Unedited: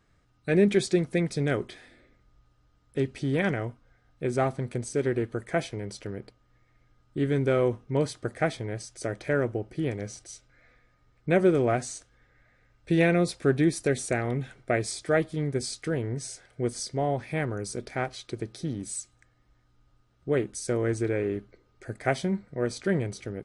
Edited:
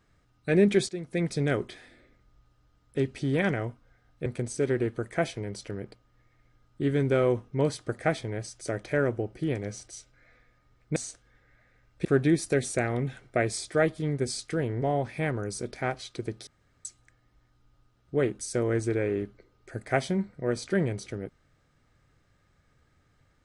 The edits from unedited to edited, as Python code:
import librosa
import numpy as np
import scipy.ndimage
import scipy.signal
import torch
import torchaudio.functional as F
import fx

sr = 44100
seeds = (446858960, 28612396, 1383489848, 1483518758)

y = fx.edit(x, sr, fx.fade_in_from(start_s=0.89, length_s=0.36, curve='qua', floor_db=-13.0),
    fx.cut(start_s=4.26, length_s=0.36),
    fx.cut(start_s=11.32, length_s=0.51),
    fx.cut(start_s=12.92, length_s=0.47),
    fx.cut(start_s=16.16, length_s=0.8),
    fx.room_tone_fill(start_s=18.61, length_s=0.38), tone=tone)